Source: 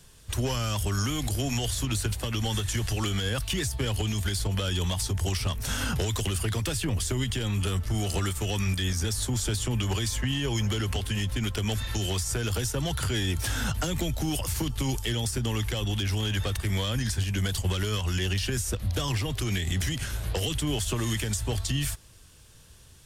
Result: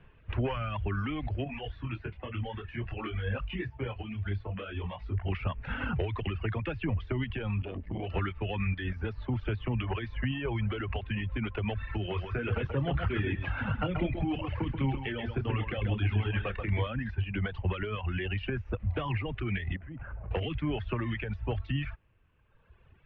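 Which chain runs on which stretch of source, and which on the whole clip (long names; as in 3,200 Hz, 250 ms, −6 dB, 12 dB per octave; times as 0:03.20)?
0:01.44–0:05.32: double-tracking delay 41 ms −14 dB + micro pitch shift up and down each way 18 cents
0:07.62–0:08.10: parametric band 1,300 Hz −13 dB 0.25 octaves + saturating transformer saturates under 240 Hz
0:12.05–0:16.87: double-tracking delay 29 ms −8.5 dB + single-tap delay 133 ms −3.5 dB
0:19.76–0:20.31: low-pass filter 1,500 Hz + downward compressor 5 to 1, threshold −31 dBFS
whole clip: elliptic low-pass filter 2,600 Hz, stop band 70 dB; reverb reduction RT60 1.7 s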